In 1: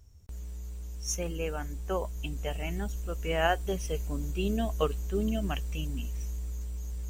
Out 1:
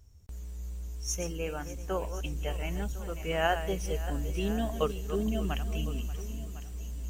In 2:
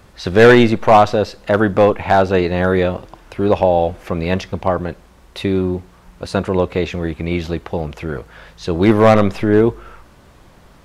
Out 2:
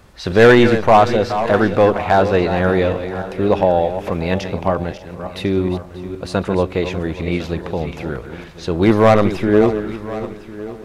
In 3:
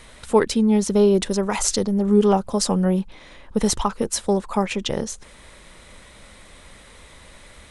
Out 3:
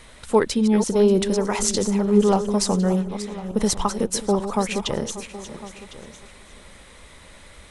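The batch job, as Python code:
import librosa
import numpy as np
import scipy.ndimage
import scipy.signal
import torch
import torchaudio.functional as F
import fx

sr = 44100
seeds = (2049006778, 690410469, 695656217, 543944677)

y = fx.reverse_delay_fb(x, sr, ms=293, feedback_pct=43, wet_db=-10)
y = y + 10.0 ** (-17.0 / 20.0) * np.pad(y, (int(1055 * sr / 1000.0), 0))[:len(y)]
y = y * 10.0 ** (-1.0 / 20.0)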